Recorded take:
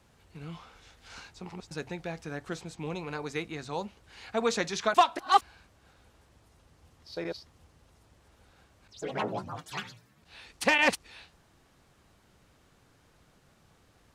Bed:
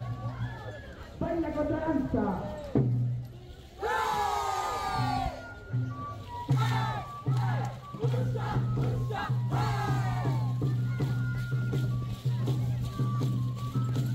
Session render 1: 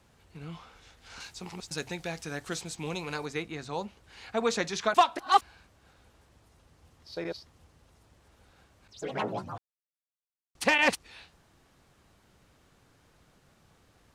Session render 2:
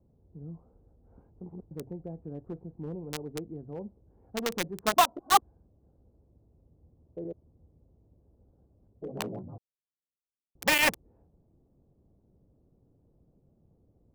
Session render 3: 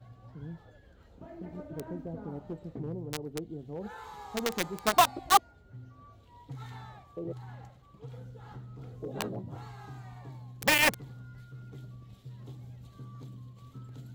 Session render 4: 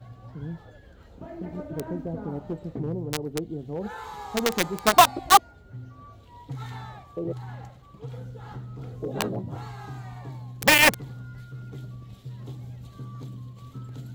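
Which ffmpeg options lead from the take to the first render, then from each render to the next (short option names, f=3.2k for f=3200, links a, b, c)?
-filter_complex "[0:a]asettb=1/sr,asplit=3[a][b][c];[a]atrim=end=1.204[d];[b]atrim=start=1.2:end=3.26,asetpts=PTS-STARTPTS,afade=t=in:d=0.004:c=qsin,afade=t=out:st=2.056:d=0.004:c=qsin,highshelf=f=3k:g=12[e];[c]atrim=start=3.256[f];[d][e]acrossfade=d=0.004:c1=hsin:c2=qsin[g];[g][f]acrossfade=d=0.004:c1=qsin:c2=hsin,asplit=3[h][i][j];[h]atrim=end=9.58,asetpts=PTS-STARTPTS,afade=t=out:st=9.576:d=0.004:c=hsin[k];[i]atrim=start=9.58:end=10.55,asetpts=PTS-STARTPTS,volume=0[l];[j]atrim=start=10.55,asetpts=PTS-STARTPTS,afade=t=in:d=0.004:c=hsin[m];[k][l][m]concat=n=3:v=0:a=1"
-filter_complex "[0:a]acrossover=split=570[a][b];[a]volume=30.5dB,asoftclip=hard,volume=-30.5dB[c];[b]acrusher=bits=3:mix=0:aa=0.000001[d];[c][d]amix=inputs=2:normalize=0"
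-filter_complex "[1:a]volume=-16.5dB[a];[0:a][a]amix=inputs=2:normalize=0"
-af "volume=7dB,alimiter=limit=-2dB:level=0:latency=1"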